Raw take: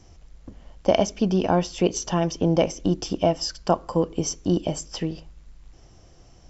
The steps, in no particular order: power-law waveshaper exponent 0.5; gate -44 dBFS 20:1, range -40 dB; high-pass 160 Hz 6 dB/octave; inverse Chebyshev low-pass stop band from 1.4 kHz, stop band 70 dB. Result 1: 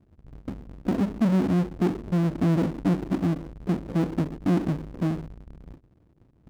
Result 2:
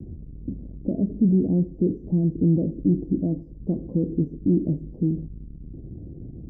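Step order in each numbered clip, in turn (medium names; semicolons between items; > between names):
gate > inverse Chebyshev low-pass > power-law waveshaper > high-pass; power-law waveshaper > high-pass > gate > inverse Chebyshev low-pass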